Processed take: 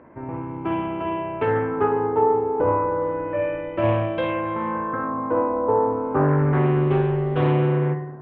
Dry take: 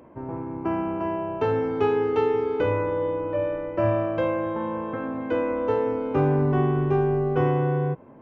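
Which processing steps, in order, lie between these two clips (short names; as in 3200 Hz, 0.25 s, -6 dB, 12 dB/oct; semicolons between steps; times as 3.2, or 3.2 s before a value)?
spring tank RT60 1 s, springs 54 ms, chirp 45 ms, DRR 6 dB; LFO low-pass sine 0.31 Hz 880–3400 Hz; Doppler distortion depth 0.22 ms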